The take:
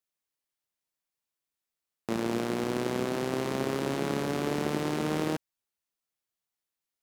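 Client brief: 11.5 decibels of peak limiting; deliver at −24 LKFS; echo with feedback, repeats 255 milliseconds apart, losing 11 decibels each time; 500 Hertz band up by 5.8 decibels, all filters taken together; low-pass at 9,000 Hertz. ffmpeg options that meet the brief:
ffmpeg -i in.wav -af "lowpass=9000,equalizer=frequency=500:width_type=o:gain=7.5,alimiter=limit=-23dB:level=0:latency=1,aecho=1:1:255|510|765:0.282|0.0789|0.0221,volume=9dB" out.wav

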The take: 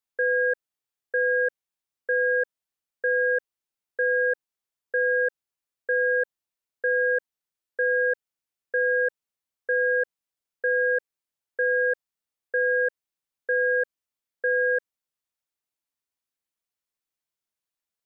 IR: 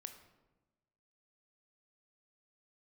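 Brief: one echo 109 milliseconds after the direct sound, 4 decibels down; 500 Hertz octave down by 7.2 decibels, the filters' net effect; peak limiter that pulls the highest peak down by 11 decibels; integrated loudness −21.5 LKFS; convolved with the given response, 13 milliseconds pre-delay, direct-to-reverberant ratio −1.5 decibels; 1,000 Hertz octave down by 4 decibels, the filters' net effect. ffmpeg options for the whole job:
-filter_complex "[0:a]equalizer=frequency=500:width_type=o:gain=-6.5,equalizer=frequency=1000:width_type=o:gain=-4,alimiter=level_in=7.5dB:limit=-24dB:level=0:latency=1,volume=-7.5dB,aecho=1:1:109:0.631,asplit=2[link_01][link_02];[1:a]atrim=start_sample=2205,adelay=13[link_03];[link_02][link_03]afir=irnorm=-1:irlink=0,volume=6.5dB[link_04];[link_01][link_04]amix=inputs=2:normalize=0,volume=14dB"

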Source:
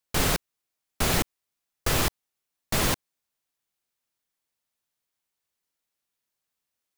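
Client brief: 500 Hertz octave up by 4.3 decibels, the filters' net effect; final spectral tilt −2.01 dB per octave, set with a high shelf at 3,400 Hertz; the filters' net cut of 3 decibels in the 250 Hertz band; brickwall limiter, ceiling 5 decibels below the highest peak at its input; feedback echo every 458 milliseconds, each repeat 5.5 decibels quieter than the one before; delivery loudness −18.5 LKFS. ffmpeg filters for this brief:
ffmpeg -i in.wav -af "equalizer=frequency=250:width_type=o:gain=-7,equalizer=frequency=500:width_type=o:gain=7,highshelf=frequency=3400:gain=6,alimiter=limit=-12.5dB:level=0:latency=1,aecho=1:1:458|916|1374|1832|2290|2748|3206:0.531|0.281|0.149|0.079|0.0419|0.0222|0.0118,volume=7.5dB" out.wav

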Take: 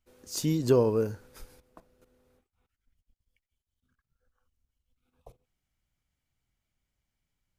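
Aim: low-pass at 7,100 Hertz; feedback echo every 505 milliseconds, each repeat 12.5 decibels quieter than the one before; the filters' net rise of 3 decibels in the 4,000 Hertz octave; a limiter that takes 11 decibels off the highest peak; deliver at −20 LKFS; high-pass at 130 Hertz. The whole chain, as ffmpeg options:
ffmpeg -i in.wav -af "highpass=130,lowpass=7100,equalizer=frequency=4000:width_type=o:gain=4.5,alimiter=limit=-22dB:level=0:latency=1,aecho=1:1:505|1010|1515:0.237|0.0569|0.0137,volume=14dB" out.wav

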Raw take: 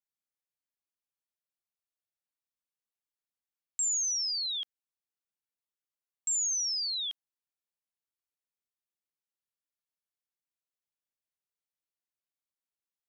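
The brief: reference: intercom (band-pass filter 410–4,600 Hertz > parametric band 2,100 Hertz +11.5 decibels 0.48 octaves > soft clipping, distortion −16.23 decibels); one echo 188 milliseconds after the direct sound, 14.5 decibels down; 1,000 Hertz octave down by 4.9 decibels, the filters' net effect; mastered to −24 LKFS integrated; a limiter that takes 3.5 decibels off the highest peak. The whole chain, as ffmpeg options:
ffmpeg -i in.wav -af "equalizer=frequency=1000:width_type=o:gain=-8,alimiter=level_in=4.5dB:limit=-24dB:level=0:latency=1,volume=-4.5dB,highpass=410,lowpass=4600,equalizer=frequency=2100:width_type=o:width=0.48:gain=11.5,aecho=1:1:188:0.188,asoftclip=threshold=-35dB,volume=13.5dB" out.wav

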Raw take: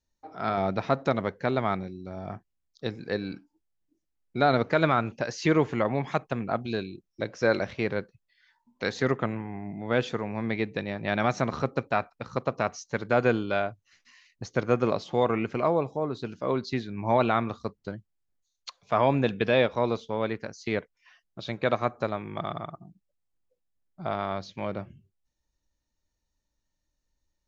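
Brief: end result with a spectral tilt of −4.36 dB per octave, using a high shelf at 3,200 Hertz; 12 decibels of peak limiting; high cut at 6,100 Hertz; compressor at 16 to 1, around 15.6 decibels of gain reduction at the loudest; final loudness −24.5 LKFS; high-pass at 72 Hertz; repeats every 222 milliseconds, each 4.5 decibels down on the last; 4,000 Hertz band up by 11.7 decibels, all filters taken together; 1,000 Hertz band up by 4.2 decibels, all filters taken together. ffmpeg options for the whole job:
ffmpeg -i in.wav -af "highpass=72,lowpass=6100,equalizer=frequency=1000:width_type=o:gain=4.5,highshelf=frequency=3200:gain=7,equalizer=frequency=4000:width_type=o:gain=9,acompressor=threshold=-30dB:ratio=16,alimiter=level_in=1dB:limit=-24dB:level=0:latency=1,volume=-1dB,aecho=1:1:222|444|666|888|1110|1332|1554|1776|1998:0.596|0.357|0.214|0.129|0.0772|0.0463|0.0278|0.0167|0.01,volume=13.5dB" out.wav

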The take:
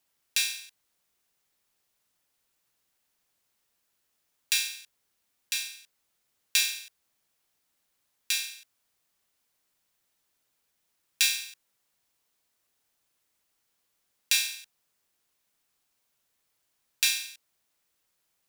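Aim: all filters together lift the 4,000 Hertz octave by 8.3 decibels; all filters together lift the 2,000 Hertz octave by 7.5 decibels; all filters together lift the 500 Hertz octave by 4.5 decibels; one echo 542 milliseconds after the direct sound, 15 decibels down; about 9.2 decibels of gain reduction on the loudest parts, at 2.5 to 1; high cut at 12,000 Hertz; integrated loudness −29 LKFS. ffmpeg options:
ffmpeg -i in.wav -af "lowpass=12000,equalizer=frequency=500:width_type=o:gain=4.5,equalizer=frequency=2000:width_type=o:gain=6.5,equalizer=frequency=4000:width_type=o:gain=8,acompressor=threshold=-27dB:ratio=2.5,aecho=1:1:542:0.178,volume=2dB" out.wav

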